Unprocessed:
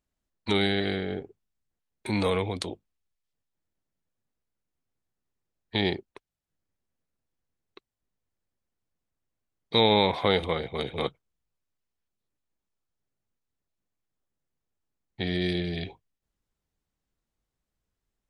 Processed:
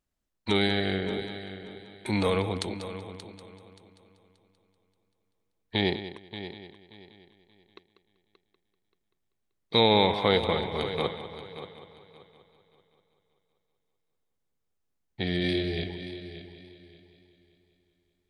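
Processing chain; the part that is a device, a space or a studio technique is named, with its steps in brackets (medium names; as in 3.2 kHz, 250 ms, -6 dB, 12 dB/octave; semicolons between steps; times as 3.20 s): 15.41–15.84 s: doubling 26 ms -4 dB; multi-head tape echo (multi-head delay 193 ms, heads first and third, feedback 42%, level -13 dB; wow and flutter 19 cents)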